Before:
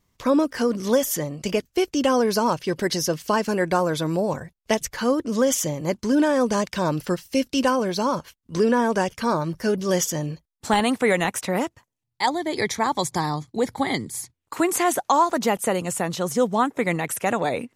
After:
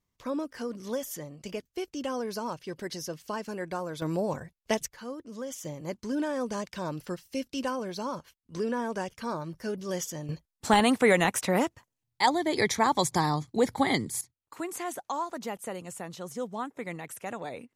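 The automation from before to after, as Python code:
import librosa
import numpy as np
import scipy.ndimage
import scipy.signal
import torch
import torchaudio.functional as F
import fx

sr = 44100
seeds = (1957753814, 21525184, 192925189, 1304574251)

y = fx.gain(x, sr, db=fx.steps((0.0, -13.0), (4.02, -6.0), (4.86, -17.5), (5.65, -11.0), (10.29, -1.5), (14.21, -14.0)))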